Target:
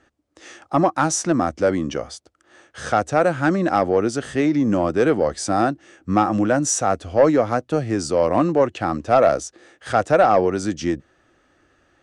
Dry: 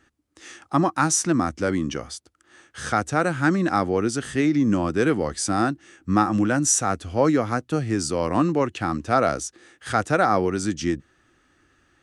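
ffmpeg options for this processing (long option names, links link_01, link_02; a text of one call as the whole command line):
ffmpeg -i in.wav -af "lowpass=8200,equalizer=frequency=600:width=1.5:gain=10,asoftclip=type=tanh:threshold=-5dB" out.wav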